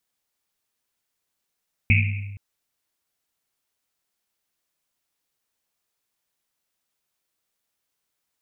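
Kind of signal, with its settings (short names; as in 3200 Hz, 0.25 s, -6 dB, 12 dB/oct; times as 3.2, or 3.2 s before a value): Risset drum length 0.47 s, pitch 100 Hz, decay 1.44 s, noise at 2400 Hz, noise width 510 Hz, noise 35%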